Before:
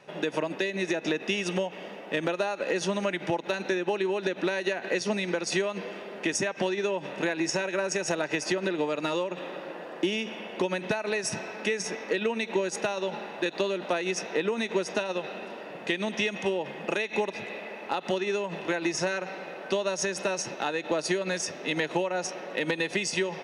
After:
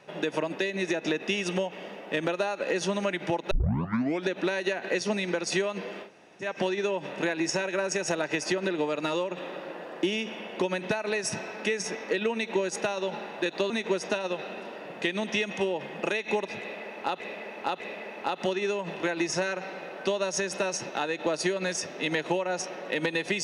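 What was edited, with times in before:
3.51 s: tape start 0.76 s
6.06–6.44 s: room tone, crossfade 0.10 s
13.70–14.55 s: delete
17.45–18.05 s: loop, 3 plays

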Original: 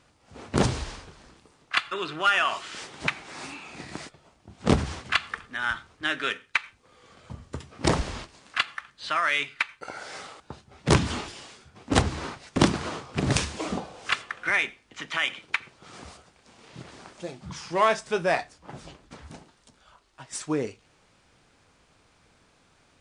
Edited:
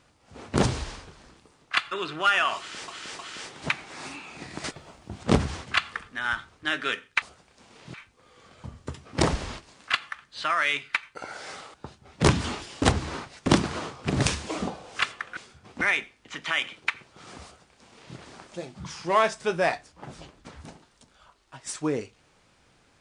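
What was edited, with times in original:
2.57–2.88 s: loop, 3 plays
4.02–4.61 s: gain +9.5 dB
11.48–11.92 s: move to 14.47 s
16.10–16.82 s: copy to 6.60 s

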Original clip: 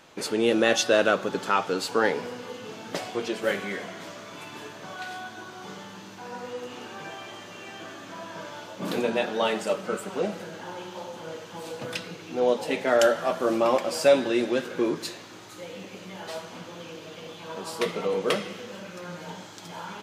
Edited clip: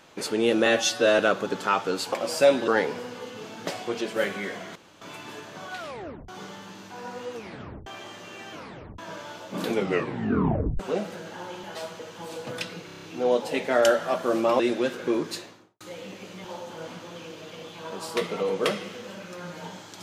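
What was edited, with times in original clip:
0.66–1.01 s: stretch 1.5×
4.03–4.29 s: room tone
5.05 s: tape stop 0.51 s
6.62 s: tape stop 0.52 s
7.80 s: tape stop 0.46 s
8.94 s: tape stop 1.13 s
10.91–11.34 s: swap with 16.16–16.52 s
12.20 s: stutter 0.03 s, 7 plays
13.76–14.31 s: move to 1.95 s
15.06–15.52 s: studio fade out

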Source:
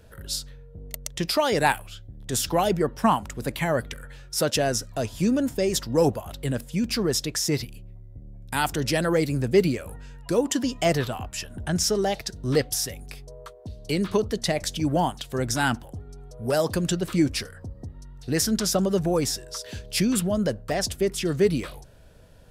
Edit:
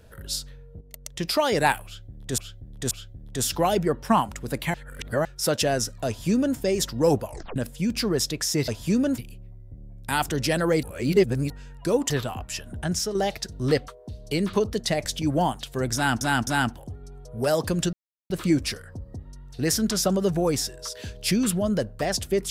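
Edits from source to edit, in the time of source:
0.81–1.35 s: fade in, from -13 dB
1.85–2.38 s: loop, 3 plays
3.68–4.19 s: reverse
5.01–5.51 s: copy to 7.62 s
6.20 s: tape stop 0.30 s
9.27–9.94 s: reverse
10.54–10.94 s: delete
11.63–11.99 s: fade out, to -7 dB
12.72–13.46 s: delete
15.53–15.79 s: loop, 3 plays
16.99 s: insert silence 0.37 s

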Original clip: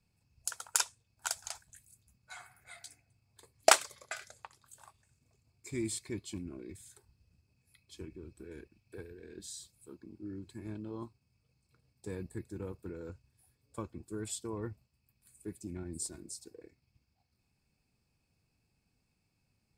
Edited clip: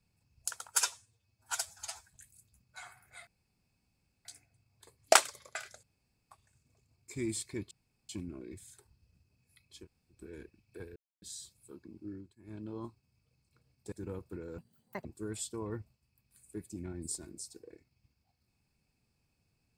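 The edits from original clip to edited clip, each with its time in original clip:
0.73–1.65 s: stretch 1.5×
2.81 s: insert room tone 0.98 s
4.39–4.87 s: room tone
6.27 s: insert room tone 0.38 s
8.01–8.32 s: room tone, crossfade 0.10 s
9.14–9.40 s: mute
10.26–10.83 s: dip -18.5 dB, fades 0.27 s
12.10–12.45 s: delete
13.11–13.96 s: speed 181%

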